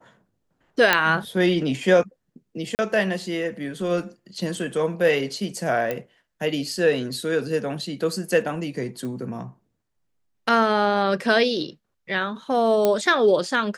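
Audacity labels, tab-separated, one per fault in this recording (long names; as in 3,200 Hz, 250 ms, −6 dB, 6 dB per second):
0.930000	0.930000	click −2 dBFS
2.750000	2.790000	drop-out 39 ms
5.910000	5.910000	click −13 dBFS
9.050000	9.050000	click −23 dBFS
12.850000	12.850000	click −7 dBFS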